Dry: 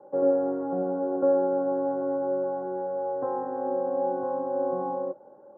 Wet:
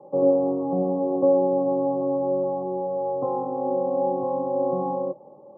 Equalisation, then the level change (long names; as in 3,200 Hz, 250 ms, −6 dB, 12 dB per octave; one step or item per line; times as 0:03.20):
linear-phase brick-wall low-pass 1,300 Hz
parametric band 150 Hz +10 dB 0.8 octaves
+3.0 dB